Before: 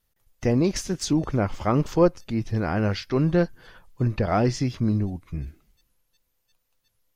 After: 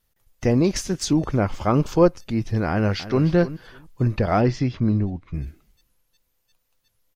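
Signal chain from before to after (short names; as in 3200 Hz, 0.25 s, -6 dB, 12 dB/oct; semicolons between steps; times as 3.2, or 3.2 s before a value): 1.59–2.02 notch 1900 Hz, Q 7; 2.69–3.26 echo throw 0.3 s, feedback 15%, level -14 dB; 4.41–5.34 LPF 3800 Hz 12 dB/oct; gain +2.5 dB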